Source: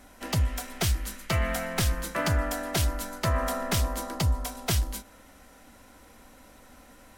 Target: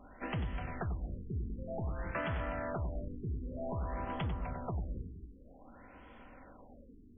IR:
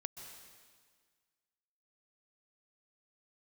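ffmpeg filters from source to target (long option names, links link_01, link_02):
-filter_complex "[0:a]aeval=exprs='0.0841*(abs(mod(val(0)/0.0841+3,4)-2)-1)':channel_layout=same,asplit=2[link_01][link_02];[1:a]atrim=start_sample=2205,afade=type=out:start_time=0.44:duration=0.01,atrim=end_sample=19845,adelay=94[link_03];[link_02][link_03]afir=irnorm=-1:irlink=0,volume=-3.5dB[link_04];[link_01][link_04]amix=inputs=2:normalize=0,acompressor=threshold=-31dB:ratio=6,afftfilt=real='re*lt(b*sr/1024,430*pow(3500/430,0.5+0.5*sin(2*PI*0.53*pts/sr)))':imag='im*lt(b*sr/1024,430*pow(3500/430,0.5+0.5*sin(2*PI*0.53*pts/sr)))':win_size=1024:overlap=0.75,volume=-2dB"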